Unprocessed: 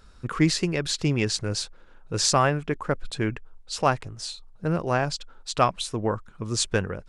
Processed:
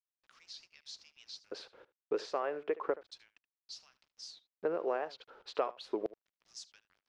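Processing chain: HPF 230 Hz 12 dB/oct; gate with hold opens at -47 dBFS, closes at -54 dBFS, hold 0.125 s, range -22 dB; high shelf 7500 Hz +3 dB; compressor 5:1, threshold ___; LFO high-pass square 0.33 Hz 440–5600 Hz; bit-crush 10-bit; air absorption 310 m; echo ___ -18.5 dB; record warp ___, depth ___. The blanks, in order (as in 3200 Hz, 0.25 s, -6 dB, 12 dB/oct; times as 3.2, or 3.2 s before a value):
-34 dBFS, 75 ms, 78 rpm, 160 cents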